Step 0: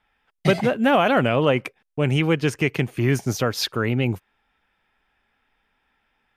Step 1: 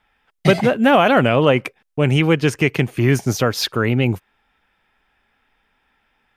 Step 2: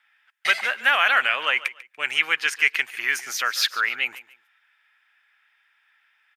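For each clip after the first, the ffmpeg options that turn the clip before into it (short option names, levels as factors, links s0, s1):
-af "deesser=0.45,volume=1.68"
-af "highpass=f=1700:t=q:w=1.9,aecho=1:1:144|288:0.133|0.036,volume=0.841"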